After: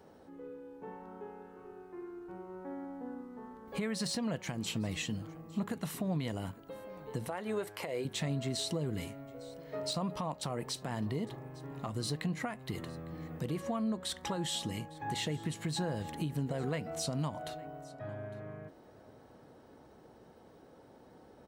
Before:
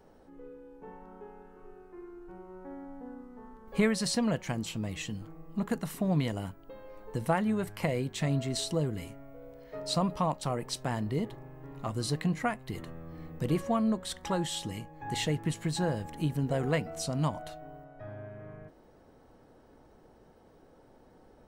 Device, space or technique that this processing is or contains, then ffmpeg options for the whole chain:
broadcast voice chain: -filter_complex "[0:a]asettb=1/sr,asplit=3[s0][s1][s2];[s0]atrim=end=7.284[s3];[s1]atrim=start=7.28:end=8.05,asetpts=PTS-STARTPTS,afade=t=in:d=0.004:c=qsin,afade=t=out:st=0.766:d=0.004:c=qsin,lowshelf=f=280:t=q:w=1.5:g=-9.5[s4];[s2]atrim=start=8.046[s5];[s3][s4]acrossfade=d=0.004:c1=hsin:c2=qsin[s6];[s6][s5]acrossfade=d=0.004:c1=qsin:c2=hsin,highpass=78,deesser=0.7,acompressor=threshold=0.0316:ratio=4,equalizer=f=3800:t=o:w=0.45:g=2.5,alimiter=level_in=1.5:limit=0.0631:level=0:latency=1:release=169,volume=0.668,aecho=1:1:856:0.0841,volume=1.19"

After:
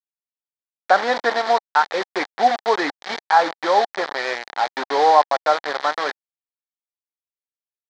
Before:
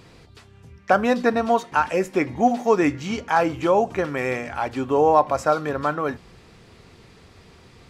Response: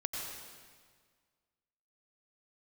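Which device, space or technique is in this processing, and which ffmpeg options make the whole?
hand-held game console: -af "acrusher=bits=3:mix=0:aa=0.000001,highpass=500,equalizer=f=810:t=q:w=4:g=6,equalizer=f=1800:t=q:w=4:g=5,equalizer=f=2700:t=q:w=4:g=-10,equalizer=f=4100:t=q:w=4:g=3,lowpass=f=4800:w=0.5412,lowpass=f=4800:w=1.3066,volume=1.12"

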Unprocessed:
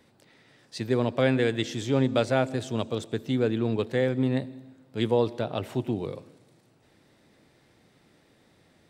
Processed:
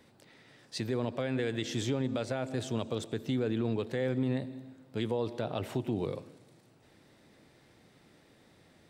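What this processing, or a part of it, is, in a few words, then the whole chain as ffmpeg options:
stacked limiters: -af "alimiter=limit=0.188:level=0:latency=1:release=480,alimiter=limit=0.133:level=0:latency=1:release=205,alimiter=limit=0.075:level=0:latency=1:release=52"

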